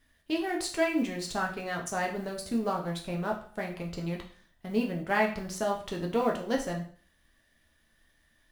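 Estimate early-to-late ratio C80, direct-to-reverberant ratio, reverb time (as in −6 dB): 13.5 dB, 0.0 dB, 0.45 s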